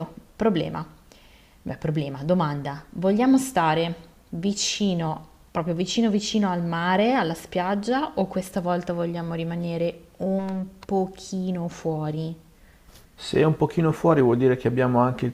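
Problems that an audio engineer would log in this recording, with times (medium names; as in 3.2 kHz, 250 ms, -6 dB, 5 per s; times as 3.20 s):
10.38–10.63 s: clipped -26 dBFS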